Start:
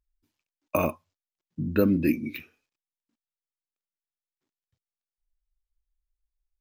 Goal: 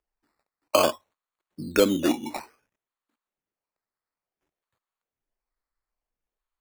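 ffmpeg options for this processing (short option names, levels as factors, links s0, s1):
-filter_complex "[0:a]lowpass=f=4400:t=q:w=12,acrossover=split=330 2600:gain=0.141 1 0.178[s0][s1][s2];[s0][s1][s2]amix=inputs=3:normalize=0,acrusher=samples=11:mix=1:aa=0.000001:lfo=1:lforange=6.6:lforate=0.57,volume=2.11"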